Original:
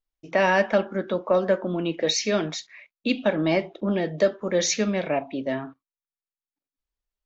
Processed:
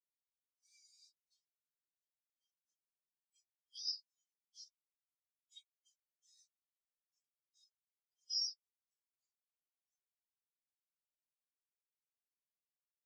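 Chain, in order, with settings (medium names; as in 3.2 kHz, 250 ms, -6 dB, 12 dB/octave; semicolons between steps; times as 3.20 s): local Wiener filter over 9 samples; inverse Chebyshev high-pass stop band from 1.2 kHz, stop band 80 dB; compression 3:1, threshold -50 dBFS, peak gain reduction 17 dB; formant shift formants -3 st; saturation -37 dBFS, distortion -22 dB; plain phase-vocoder stretch 1.8×; spectral contrast expander 2.5:1; trim +11 dB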